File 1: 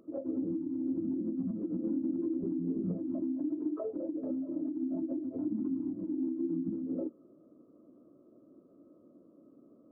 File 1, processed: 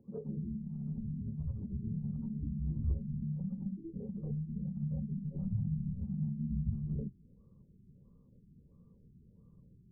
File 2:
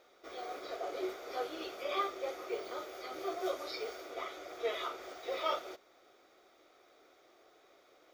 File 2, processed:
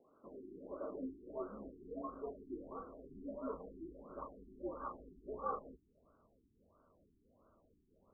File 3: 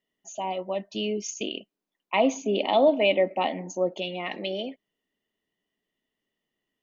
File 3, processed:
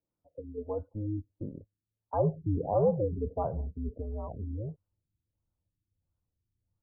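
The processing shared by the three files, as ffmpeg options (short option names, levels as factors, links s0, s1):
-af "asubboost=boost=10.5:cutoff=130,afreqshift=-110,afftfilt=real='re*lt(b*sr/1024,390*pow(1600/390,0.5+0.5*sin(2*PI*1.5*pts/sr)))':imag='im*lt(b*sr/1024,390*pow(1600/390,0.5+0.5*sin(2*PI*1.5*pts/sr)))':win_size=1024:overlap=0.75,volume=0.668"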